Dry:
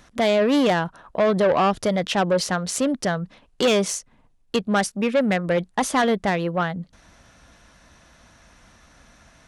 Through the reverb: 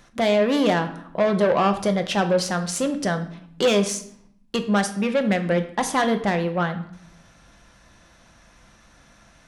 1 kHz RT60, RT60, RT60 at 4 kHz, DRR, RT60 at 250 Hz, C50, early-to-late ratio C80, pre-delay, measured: 0.65 s, 0.70 s, 0.55 s, 7.0 dB, 1.1 s, 11.5 dB, 14.5 dB, 5 ms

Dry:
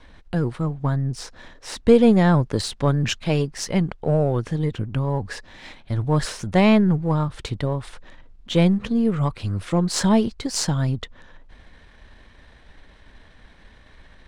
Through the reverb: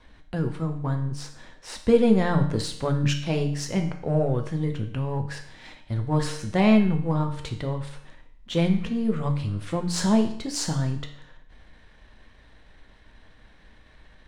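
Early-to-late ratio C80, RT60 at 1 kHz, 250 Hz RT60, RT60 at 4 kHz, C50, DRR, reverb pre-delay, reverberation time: 12.0 dB, 0.65 s, 0.65 s, 0.65 s, 8.5 dB, 4.0 dB, 6 ms, 0.65 s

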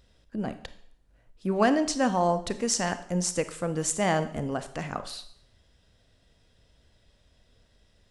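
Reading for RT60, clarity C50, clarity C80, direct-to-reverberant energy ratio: 0.65 s, 13.0 dB, 16.0 dB, 11.0 dB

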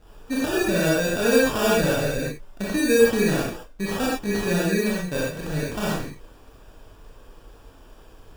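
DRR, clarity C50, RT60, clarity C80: -6.5 dB, -2.0 dB, not exponential, 2.0 dB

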